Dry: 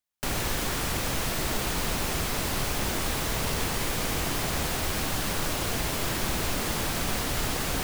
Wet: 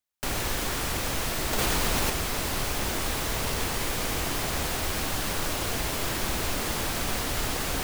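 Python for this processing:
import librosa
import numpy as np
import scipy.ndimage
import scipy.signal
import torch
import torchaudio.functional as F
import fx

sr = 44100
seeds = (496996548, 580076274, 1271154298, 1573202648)

y = fx.peak_eq(x, sr, hz=160.0, db=-3.5, octaves=1.0)
y = fx.env_flatten(y, sr, amount_pct=100, at=(1.53, 2.1))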